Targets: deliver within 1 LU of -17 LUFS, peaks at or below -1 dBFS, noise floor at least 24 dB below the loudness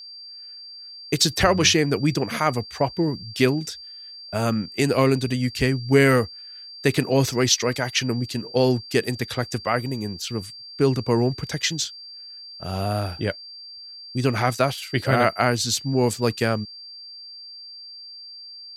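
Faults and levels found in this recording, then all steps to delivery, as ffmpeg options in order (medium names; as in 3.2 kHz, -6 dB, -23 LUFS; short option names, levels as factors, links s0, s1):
steady tone 4.7 kHz; tone level -38 dBFS; loudness -22.5 LUFS; peak level -3.0 dBFS; loudness target -17.0 LUFS
-> -af "bandreject=f=4700:w=30"
-af "volume=1.88,alimiter=limit=0.891:level=0:latency=1"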